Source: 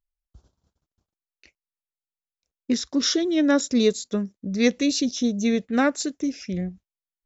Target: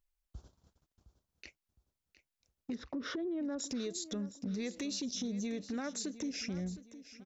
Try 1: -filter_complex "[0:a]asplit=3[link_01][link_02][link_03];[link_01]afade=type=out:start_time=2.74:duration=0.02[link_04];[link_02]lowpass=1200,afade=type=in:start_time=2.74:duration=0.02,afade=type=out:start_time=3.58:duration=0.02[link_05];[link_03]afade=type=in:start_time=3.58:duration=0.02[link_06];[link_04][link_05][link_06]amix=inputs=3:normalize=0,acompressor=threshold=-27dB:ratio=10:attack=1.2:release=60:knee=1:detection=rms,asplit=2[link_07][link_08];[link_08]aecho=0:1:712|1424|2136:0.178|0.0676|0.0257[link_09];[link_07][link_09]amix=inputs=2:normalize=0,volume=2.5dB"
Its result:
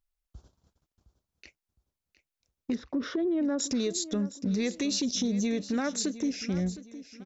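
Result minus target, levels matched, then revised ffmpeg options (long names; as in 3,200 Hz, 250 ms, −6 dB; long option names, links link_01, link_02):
downward compressor: peak gain reduction −9 dB
-filter_complex "[0:a]asplit=3[link_01][link_02][link_03];[link_01]afade=type=out:start_time=2.74:duration=0.02[link_04];[link_02]lowpass=1200,afade=type=in:start_time=2.74:duration=0.02,afade=type=out:start_time=3.58:duration=0.02[link_05];[link_03]afade=type=in:start_time=3.58:duration=0.02[link_06];[link_04][link_05][link_06]amix=inputs=3:normalize=0,acompressor=threshold=-37dB:ratio=10:attack=1.2:release=60:knee=1:detection=rms,asplit=2[link_07][link_08];[link_08]aecho=0:1:712|1424|2136:0.178|0.0676|0.0257[link_09];[link_07][link_09]amix=inputs=2:normalize=0,volume=2.5dB"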